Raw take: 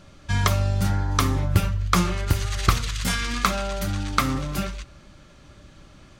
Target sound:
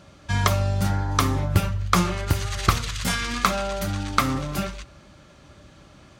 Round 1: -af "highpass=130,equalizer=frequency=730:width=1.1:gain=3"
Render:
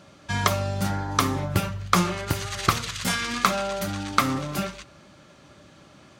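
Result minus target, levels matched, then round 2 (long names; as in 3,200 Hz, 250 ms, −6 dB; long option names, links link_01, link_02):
125 Hz band −3.5 dB
-af "highpass=54,equalizer=frequency=730:width=1.1:gain=3"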